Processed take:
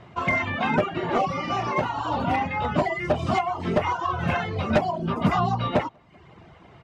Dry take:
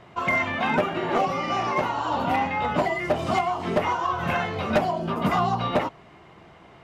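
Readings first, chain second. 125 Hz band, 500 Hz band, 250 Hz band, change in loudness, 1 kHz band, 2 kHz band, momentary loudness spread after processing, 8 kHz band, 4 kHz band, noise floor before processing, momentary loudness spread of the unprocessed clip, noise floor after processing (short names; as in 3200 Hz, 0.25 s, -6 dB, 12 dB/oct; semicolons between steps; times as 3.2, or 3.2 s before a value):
+3.5 dB, -0.5 dB, +1.5 dB, 0.0 dB, -1.0 dB, -1.0 dB, 3 LU, n/a, -1.5 dB, -50 dBFS, 3 LU, -51 dBFS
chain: LPF 7900 Hz 12 dB/oct; bell 89 Hz +7 dB 2.2 oct; feedback echo 0.19 s, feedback 43%, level -24 dB; reverb removal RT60 0.67 s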